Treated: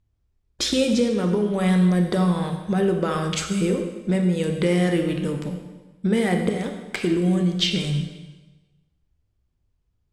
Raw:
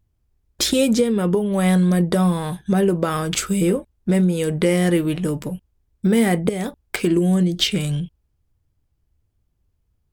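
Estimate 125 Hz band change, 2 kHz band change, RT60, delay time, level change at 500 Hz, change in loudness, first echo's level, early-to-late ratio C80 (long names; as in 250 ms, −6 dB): −2.0 dB, −2.0 dB, 1.2 s, no echo audible, −2.5 dB, −2.5 dB, no echo audible, 8.0 dB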